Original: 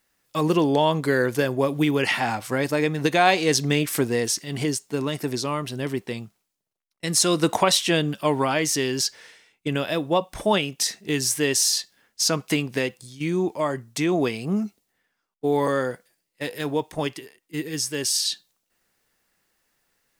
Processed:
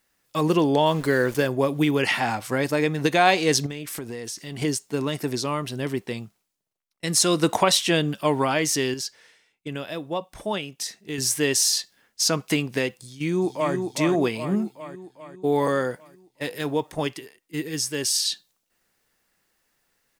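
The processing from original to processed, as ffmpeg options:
-filter_complex "[0:a]asettb=1/sr,asplit=3[a][b][c];[a]atrim=end=0.864[d];[b]atrim=start=0.86:end=1.47,asetpts=PTS-STARTPTS,afade=t=in:d=0.004:c=qsin,afade=t=out:st=0.606:d=0.004:c=qsin,aeval=exprs='val(0)*gte(abs(val(0)),0.0158)':c=same[e];[c]atrim=start=1.466[f];[d][e]acrossfade=d=0.004:c1=hsin:c2=qsin[g];[g][f]acrossfade=d=0.004:c1=qsin:c2=hsin,asettb=1/sr,asplit=3[h][i][j];[h]atrim=end=3.664[k];[i]atrim=start=3.66:end=4.62,asetpts=PTS-STARTPTS,afade=t=in:d=0.004:c=qsin,afade=t=out:st=0.956:d=0.004:c=qsin,acompressor=threshold=-30dB:ratio=6:attack=3.2:release=140:knee=1:detection=peak[l];[j]atrim=start=4.616[m];[k][l]acrossfade=d=0.004:c1=hsin:c2=qsin[n];[n][m]acrossfade=d=0.004:c1=qsin:c2=hsin,asplit=2[o][p];[p]afade=t=in:st=13.01:d=0.01,afade=t=out:st=13.75:d=0.01,aecho=0:1:400|800|1200|1600|2000|2400|2800|3200:0.562341|0.337405|0.202443|0.121466|0.0728794|0.0437277|0.0262366|0.015742[q];[o][q]amix=inputs=2:normalize=0,asettb=1/sr,asplit=3[r][s][t];[r]atrim=end=14.274[u];[s]atrim=start=14.27:end=15.56,asetpts=PTS-STARTPTS,afade=t=in:d=0.004:c=qsin,afade=t=out:st=1.286:d=0.004:c=qsin,equalizer=f=5.8k:t=o:w=0.2:g=-13[v];[t]atrim=start=15.556[w];[u][v]acrossfade=d=0.004:c1=hsin:c2=qsin[x];[x][w]acrossfade=d=0.004:c1=qsin:c2=hsin,asplit=3[y][z][aa];[y]atrim=end=8.942[ab];[z]atrim=start=8.938:end=11.182,asetpts=PTS-STARTPTS,volume=-7dB[ac];[aa]atrim=start=11.178[ad];[ab][ac]acrossfade=d=0.004:c1=hsin:c2=hsin[ae];[ae][ad]acrossfade=d=0.004:c1=hsin:c2=hsin"

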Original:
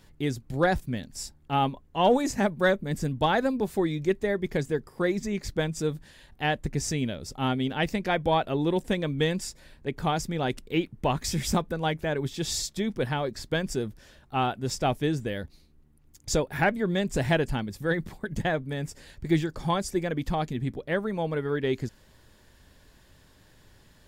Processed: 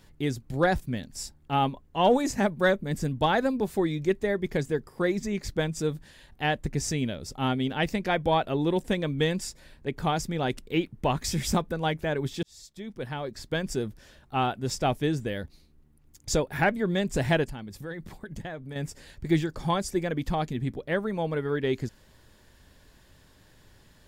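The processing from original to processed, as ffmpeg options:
-filter_complex "[0:a]asettb=1/sr,asplit=3[a][b][c];[a]atrim=end=17.444[d];[b]atrim=start=17.44:end=18.76,asetpts=PTS-STARTPTS,afade=t=in:d=0.004:c=qsin,afade=t=out:st=1.316:d=0.004:c=qsin,acompressor=threshold=-38dB:ratio=2.5:attack=3.2:release=140:knee=1:detection=peak[e];[c]atrim=start=18.756[f];[d][e]acrossfade=d=0.004:c1=hsin:c2=qsin[g];[g][f]acrossfade=d=0.004:c1=qsin:c2=hsin,asplit=2[h][i];[h]atrim=end=12.43,asetpts=PTS-STARTPTS,afade=t=out:st=12.426:d=0.004:c=hsin[j];[i]atrim=start=12.43,asetpts=PTS-STARTPTS,afade=t=in:d=1.36[k];[j][k]concat=n=2:v=0:a=1"

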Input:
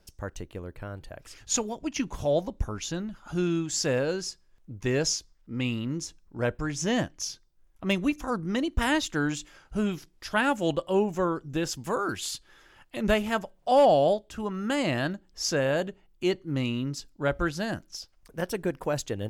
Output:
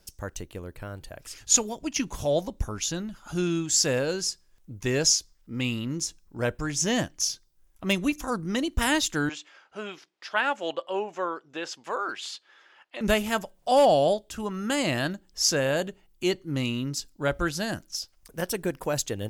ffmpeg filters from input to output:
-filter_complex "[0:a]asettb=1/sr,asplit=3[a][b][c];[a]atrim=end=9.294[d];[b]atrim=start=9.29:end=13.01,asetpts=PTS-STARTPTS,afade=t=in:d=0.004:c=qsin,afade=t=out:st=3.716:d=0.004:c=qsin,highpass=520,lowpass=3.2k[e];[c]atrim=start=13.006[f];[d][e]acrossfade=d=0.004:c1=hsin:c2=qsin[g];[g][f]acrossfade=d=0.004:c1=qsin:c2=hsin,highshelf=f=4.3k:g=10.5"

